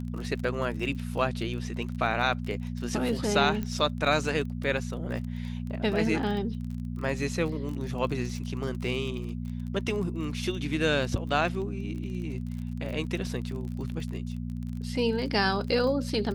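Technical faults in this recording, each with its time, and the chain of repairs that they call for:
crackle 31/s -35 dBFS
hum 60 Hz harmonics 4 -34 dBFS
3.63 pop -20 dBFS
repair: de-click; de-hum 60 Hz, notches 4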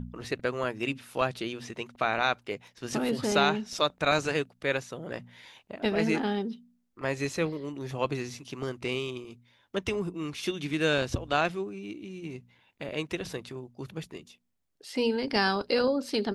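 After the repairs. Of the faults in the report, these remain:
none

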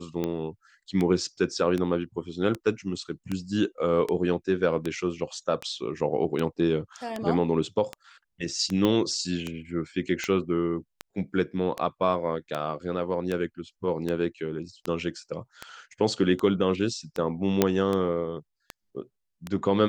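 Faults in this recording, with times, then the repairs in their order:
tick 78 rpm -16 dBFS
8.85 pop -12 dBFS
17.62 pop -5 dBFS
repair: de-click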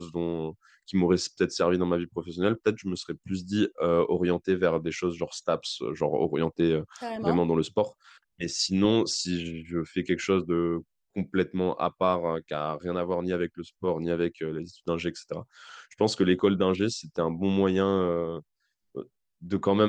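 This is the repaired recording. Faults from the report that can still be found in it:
8.85 pop

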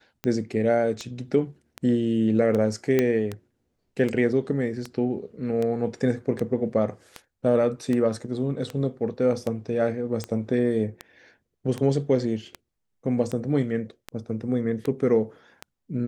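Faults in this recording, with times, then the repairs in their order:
tick 78 rpm -16 dBFS
2.99 pop -9 dBFS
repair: de-click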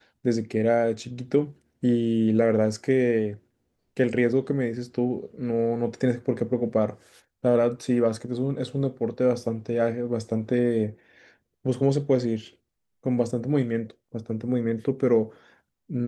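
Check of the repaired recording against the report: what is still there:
none

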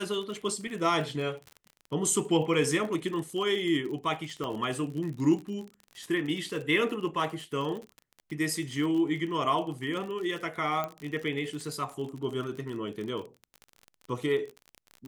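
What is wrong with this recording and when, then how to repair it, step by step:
crackle 47/s -35 dBFS
4.44 pop -22 dBFS
10.84 pop -19 dBFS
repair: de-click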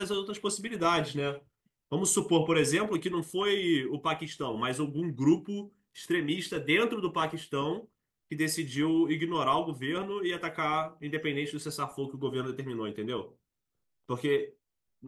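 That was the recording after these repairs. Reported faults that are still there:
4.44 pop

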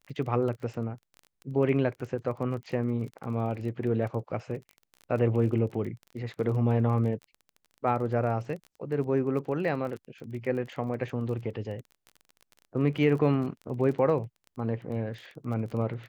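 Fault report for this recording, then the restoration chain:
crackle 23/s -37 dBFS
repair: de-click

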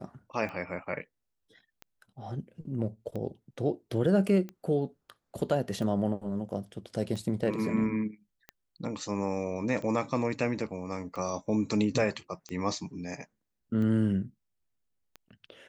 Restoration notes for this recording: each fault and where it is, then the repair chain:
tick 45 rpm -27 dBFS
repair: de-click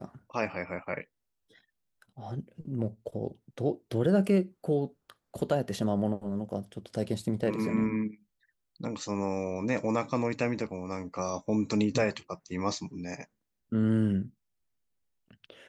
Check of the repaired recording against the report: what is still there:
none

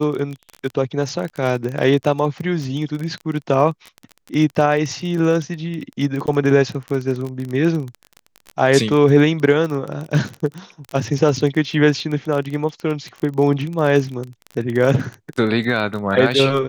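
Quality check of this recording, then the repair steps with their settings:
crackle 24/s -23 dBFS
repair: de-click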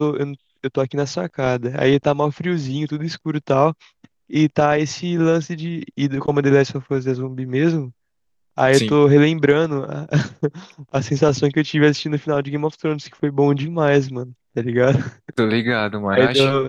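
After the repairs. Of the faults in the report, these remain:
none

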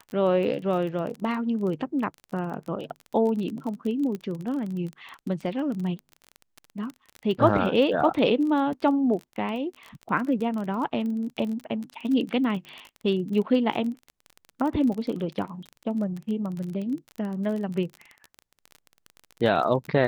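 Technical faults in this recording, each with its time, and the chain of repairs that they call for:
crackle 25/s -31 dBFS
4.15 pop -21 dBFS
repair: de-click

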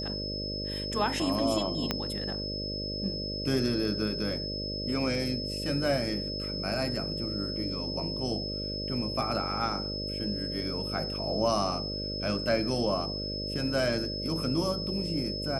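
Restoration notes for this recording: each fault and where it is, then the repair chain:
buzz 50 Hz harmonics 12 -37 dBFS
tone 5200 Hz -35 dBFS
1.91 pop -12 dBFS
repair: de-click; de-hum 50 Hz, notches 12; notch 5200 Hz, Q 30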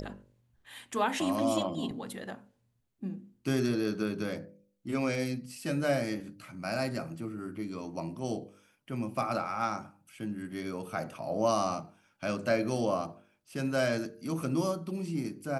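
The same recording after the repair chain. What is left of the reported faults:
1.91 pop

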